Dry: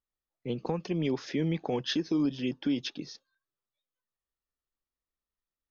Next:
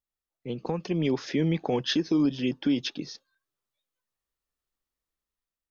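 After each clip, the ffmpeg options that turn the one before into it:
-af "dynaudnorm=f=290:g=5:m=2,volume=0.794"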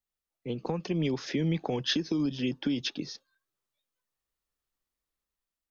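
-filter_complex "[0:a]acrossover=split=170|3000[s0][s1][s2];[s1]acompressor=threshold=0.0398:ratio=6[s3];[s0][s3][s2]amix=inputs=3:normalize=0"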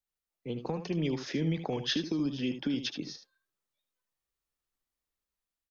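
-af "aecho=1:1:75:0.316,volume=0.75"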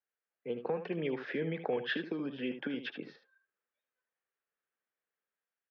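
-af "highpass=260,equalizer=f=300:t=q:w=4:g=-6,equalizer=f=470:t=q:w=4:g=5,equalizer=f=990:t=q:w=4:g=-3,equalizer=f=1600:t=q:w=4:g=8,lowpass=f=2700:w=0.5412,lowpass=f=2700:w=1.3066"

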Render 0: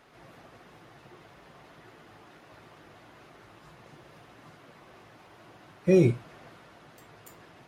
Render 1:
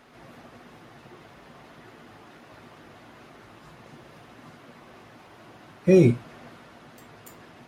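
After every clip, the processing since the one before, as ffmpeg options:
-af "equalizer=f=240:t=o:w=0.21:g=8,volume=1.5"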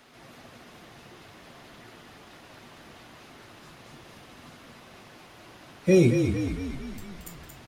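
-filter_complex "[0:a]acrossover=split=370|2600[s0][s1][s2];[s2]acontrast=85[s3];[s0][s1][s3]amix=inputs=3:normalize=0,asplit=9[s4][s5][s6][s7][s8][s9][s10][s11][s12];[s5]adelay=227,afreqshift=-34,volume=0.473[s13];[s6]adelay=454,afreqshift=-68,volume=0.275[s14];[s7]adelay=681,afreqshift=-102,volume=0.158[s15];[s8]adelay=908,afreqshift=-136,volume=0.0923[s16];[s9]adelay=1135,afreqshift=-170,volume=0.0537[s17];[s10]adelay=1362,afreqshift=-204,volume=0.0309[s18];[s11]adelay=1589,afreqshift=-238,volume=0.018[s19];[s12]adelay=1816,afreqshift=-272,volume=0.0105[s20];[s4][s13][s14][s15][s16][s17][s18][s19][s20]amix=inputs=9:normalize=0,volume=0.75"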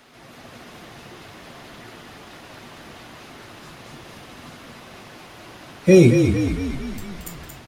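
-af "dynaudnorm=f=280:g=3:m=1.5,volume=1.58"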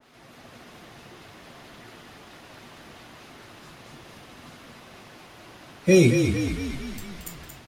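-af "adynamicequalizer=threshold=0.00794:dfrequency=1700:dqfactor=0.7:tfrequency=1700:tqfactor=0.7:attack=5:release=100:ratio=0.375:range=3:mode=boostabove:tftype=highshelf,volume=0.562"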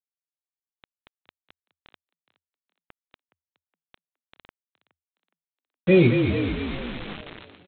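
-filter_complex "[0:a]aresample=8000,acrusher=bits=5:mix=0:aa=0.000001,aresample=44100,asplit=4[s0][s1][s2][s3];[s1]adelay=417,afreqshift=80,volume=0.141[s4];[s2]adelay=834,afreqshift=160,volume=0.0525[s5];[s3]adelay=1251,afreqshift=240,volume=0.0193[s6];[s0][s4][s5][s6]amix=inputs=4:normalize=0"

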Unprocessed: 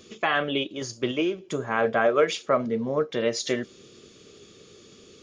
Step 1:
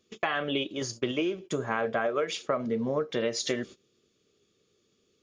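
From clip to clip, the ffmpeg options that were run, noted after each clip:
-af "agate=range=0.1:threshold=0.00891:ratio=16:detection=peak,acompressor=threshold=0.0631:ratio=10"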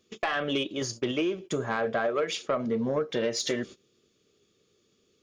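-af "asoftclip=type=tanh:threshold=0.106,volume=1.26"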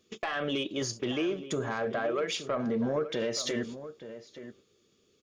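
-filter_complex "[0:a]alimiter=limit=0.0708:level=0:latency=1:release=29,asplit=2[s0][s1];[s1]adelay=874.6,volume=0.251,highshelf=f=4000:g=-19.7[s2];[s0][s2]amix=inputs=2:normalize=0"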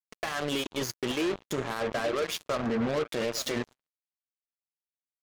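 -af "acrusher=bits=4:mix=0:aa=0.5"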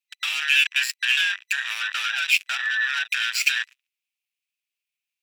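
-af "afftfilt=real='real(if(between(b,1,1012),(2*floor((b-1)/92)+1)*92-b,b),0)':imag='imag(if(between(b,1,1012),(2*floor((b-1)/92)+1)*92-b,b),0)*if(between(b,1,1012),-1,1)':win_size=2048:overlap=0.75,highpass=f=2500:t=q:w=6.3,volume=1.88"

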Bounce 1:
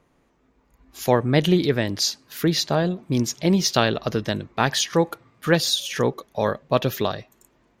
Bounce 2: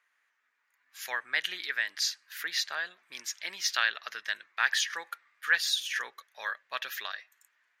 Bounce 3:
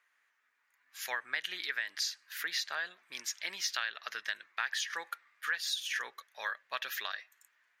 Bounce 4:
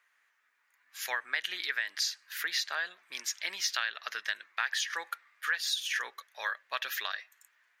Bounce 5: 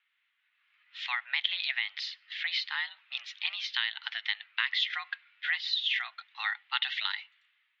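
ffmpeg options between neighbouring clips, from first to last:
-af "highpass=f=1700:t=q:w=3.4,volume=0.398"
-af "acompressor=threshold=0.0282:ratio=5"
-af "highpass=f=320:p=1,volume=1.41"
-af "aexciter=amount=3.2:drive=5.6:freq=2700,dynaudnorm=f=160:g=7:m=3.35,highpass=f=550:t=q:w=0.5412,highpass=f=550:t=q:w=1.307,lowpass=f=3300:t=q:w=0.5176,lowpass=f=3300:t=q:w=0.7071,lowpass=f=3300:t=q:w=1.932,afreqshift=240,volume=0.473"

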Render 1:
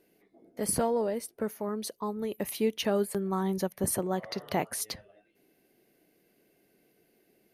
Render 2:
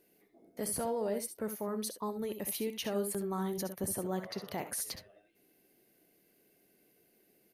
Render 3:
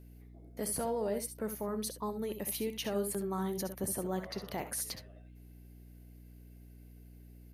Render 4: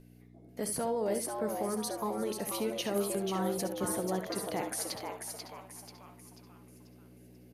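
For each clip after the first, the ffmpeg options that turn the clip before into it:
-filter_complex "[0:a]highshelf=f=6300:g=7.5,alimiter=limit=0.0668:level=0:latency=1:release=60,asplit=2[s0][s1];[s1]aecho=0:1:65|75:0.266|0.224[s2];[s0][s2]amix=inputs=2:normalize=0,volume=0.668"
-af "aeval=exprs='val(0)+0.00251*(sin(2*PI*60*n/s)+sin(2*PI*2*60*n/s)/2+sin(2*PI*3*60*n/s)/3+sin(2*PI*4*60*n/s)/4+sin(2*PI*5*60*n/s)/5)':c=same"
-filter_complex "[0:a]lowpass=11000,equalizer=f=62:t=o:w=0.72:g=-13.5,asplit=2[s0][s1];[s1]asplit=5[s2][s3][s4][s5][s6];[s2]adelay=488,afreqshift=130,volume=0.531[s7];[s3]adelay=976,afreqshift=260,volume=0.224[s8];[s4]adelay=1464,afreqshift=390,volume=0.0933[s9];[s5]adelay=1952,afreqshift=520,volume=0.0394[s10];[s6]adelay=2440,afreqshift=650,volume=0.0166[s11];[s7][s8][s9][s10][s11]amix=inputs=5:normalize=0[s12];[s0][s12]amix=inputs=2:normalize=0,volume=1.26"

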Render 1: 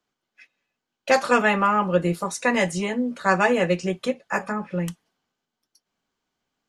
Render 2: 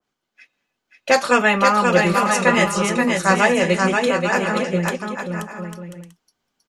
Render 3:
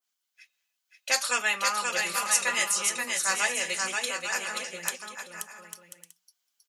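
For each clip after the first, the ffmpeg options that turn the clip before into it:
-filter_complex "[0:a]asplit=2[s0][s1];[s1]aecho=0:1:530|848|1039|1153|1222:0.631|0.398|0.251|0.158|0.1[s2];[s0][s2]amix=inputs=2:normalize=0,adynamicequalizer=threshold=0.0251:dfrequency=1900:dqfactor=0.7:tfrequency=1900:tqfactor=0.7:attack=5:release=100:ratio=0.375:range=2:mode=boostabove:tftype=highshelf,volume=1.33"
-af "aderivative,bandreject=f=60:t=h:w=6,bandreject=f=120:t=h:w=6,bandreject=f=180:t=h:w=6,volume=1.41"

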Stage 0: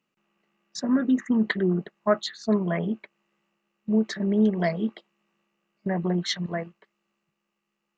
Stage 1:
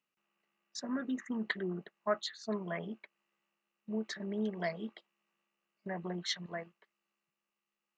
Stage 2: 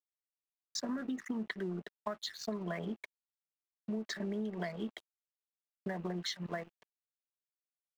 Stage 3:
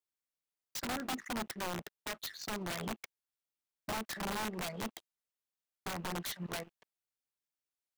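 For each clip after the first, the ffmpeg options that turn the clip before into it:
-af "lowshelf=f=430:g=-10,volume=0.447"
-filter_complex "[0:a]acrossover=split=200[s0][s1];[s1]acompressor=threshold=0.0141:ratio=5[s2];[s0][s2]amix=inputs=2:normalize=0,aeval=exprs='sgn(val(0))*max(abs(val(0))-0.00112,0)':c=same,acompressor=threshold=0.00708:ratio=6,volume=2.66"
-af "aeval=exprs='(mod(39.8*val(0)+1,2)-1)/39.8':c=same"

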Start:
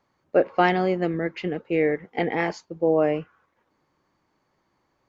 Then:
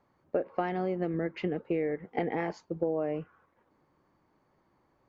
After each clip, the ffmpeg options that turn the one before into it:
-af "highshelf=f=2100:g=-11.5,acompressor=threshold=0.0355:ratio=8,volume=1.26"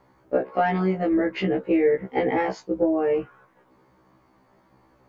-filter_complex "[0:a]asplit=2[s0][s1];[s1]alimiter=limit=0.0631:level=0:latency=1:release=191,volume=0.891[s2];[s0][s2]amix=inputs=2:normalize=0,afftfilt=real='re*1.73*eq(mod(b,3),0)':imag='im*1.73*eq(mod(b,3),0)':win_size=2048:overlap=0.75,volume=2.37"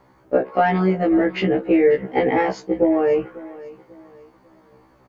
-af "aecho=1:1:544|1088|1632:0.112|0.0381|0.013,volume=1.68"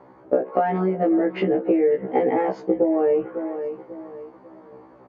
-af "acompressor=threshold=0.0562:ratio=6,bandpass=f=480:t=q:w=0.68:csg=0,volume=2.66"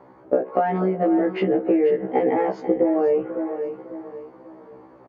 -af "aecho=1:1:488:0.237"

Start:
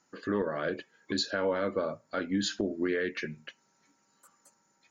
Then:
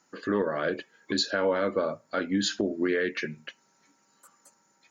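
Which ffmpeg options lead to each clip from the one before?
-af "lowshelf=f=77:g=-11.5,volume=1.58"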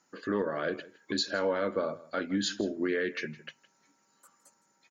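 -af "aecho=1:1:162:0.106,volume=0.668"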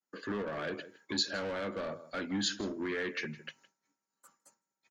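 -filter_complex "[0:a]agate=range=0.0224:threshold=0.00141:ratio=3:detection=peak,acrossover=split=200|1800[s0][s1][s2];[s1]asoftclip=type=tanh:threshold=0.0168[s3];[s0][s3][s2]amix=inputs=3:normalize=0"

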